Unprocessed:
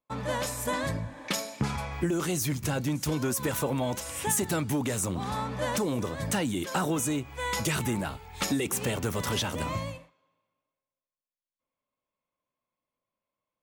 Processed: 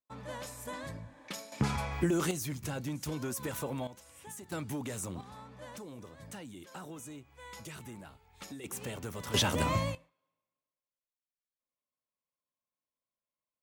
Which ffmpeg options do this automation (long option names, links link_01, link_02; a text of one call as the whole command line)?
ffmpeg -i in.wav -af "asetnsamples=nb_out_samples=441:pad=0,asendcmd='1.52 volume volume -1dB;2.31 volume volume -8dB;3.87 volume volume -19.5dB;4.52 volume volume -9dB;5.21 volume volume -17.5dB;8.64 volume volume -10.5dB;9.34 volume volume 2dB;9.95 volume volume -11dB',volume=-11.5dB" out.wav